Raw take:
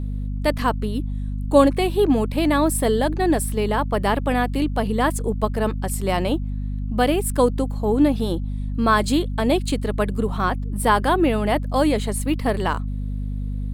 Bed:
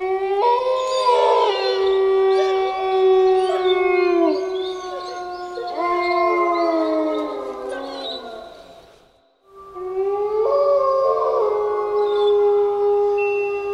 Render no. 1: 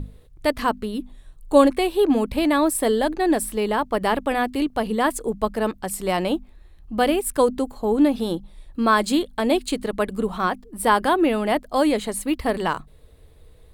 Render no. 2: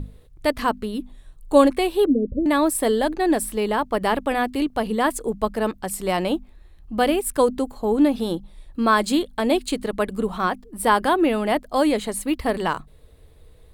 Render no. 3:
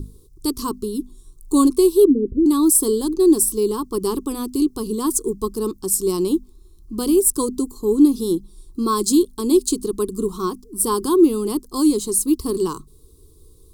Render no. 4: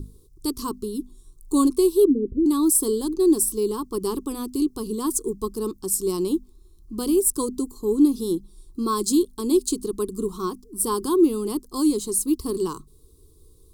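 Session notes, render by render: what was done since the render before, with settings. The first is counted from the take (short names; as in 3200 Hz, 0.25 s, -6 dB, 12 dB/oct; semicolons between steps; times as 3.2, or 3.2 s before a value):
notches 50/100/150/200/250 Hz
2.06–2.46 steep low-pass 580 Hz 96 dB/oct
EQ curve 230 Hz 0 dB, 390 Hz +10 dB, 630 Hz -26 dB, 1100 Hz -1 dB, 1800 Hz -28 dB, 5400 Hz +11 dB
gain -4 dB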